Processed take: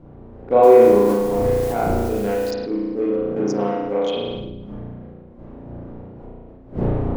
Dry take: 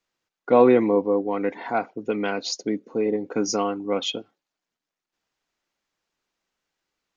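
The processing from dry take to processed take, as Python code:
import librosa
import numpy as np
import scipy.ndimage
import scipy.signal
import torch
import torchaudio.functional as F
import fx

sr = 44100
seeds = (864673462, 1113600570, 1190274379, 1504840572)

y = fx.wiener(x, sr, points=41)
y = fx.dmg_wind(y, sr, seeds[0], corner_hz=210.0, level_db=-31.0)
y = fx.highpass(y, sr, hz=130.0, slope=12, at=(3.22, 3.81))
y = fx.spec_erase(y, sr, start_s=4.08, length_s=0.51, low_hz=620.0, high_hz=2300.0)
y = fx.rev_spring(y, sr, rt60_s=1.1, pass_ms=(34,), chirp_ms=25, drr_db=-6.0)
y = fx.quant_dither(y, sr, seeds[1], bits=6, dither='triangular', at=(0.63, 2.51))
y = fx.peak_eq(y, sr, hz=560.0, db=7.0, octaves=2.0)
y = fx.sustainer(y, sr, db_per_s=26.0)
y = F.gain(torch.from_numpy(y), -8.0).numpy()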